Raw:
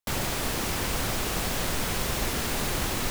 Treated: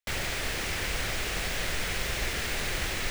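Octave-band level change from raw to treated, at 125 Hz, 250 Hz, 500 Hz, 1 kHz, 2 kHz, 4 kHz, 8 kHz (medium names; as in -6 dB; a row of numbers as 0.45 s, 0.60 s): -4.5 dB, -8.0 dB, -4.5 dB, -5.5 dB, +2.0 dB, -1.0 dB, -4.0 dB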